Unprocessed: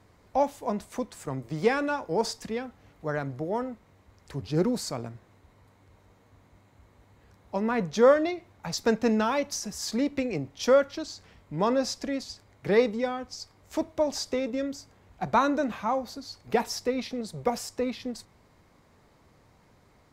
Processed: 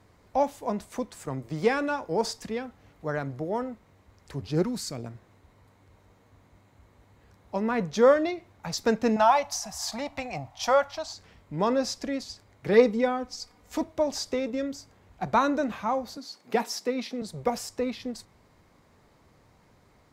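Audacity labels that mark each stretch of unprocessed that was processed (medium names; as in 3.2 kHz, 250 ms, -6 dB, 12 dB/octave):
4.620000	5.050000	peaking EQ 360 Hz -> 1.3 kHz -11 dB 1.2 oct
9.160000	11.130000	FFT filter 110 Hz 0 dB, 440 Hz -17 dB, 710 Hz +14 dB, 1.5 kHz +1 dB
12.730000	13.840000	comb 4.1 ms
16.170000	17.220000	Chebyshev high-pass 200 Hz, order 3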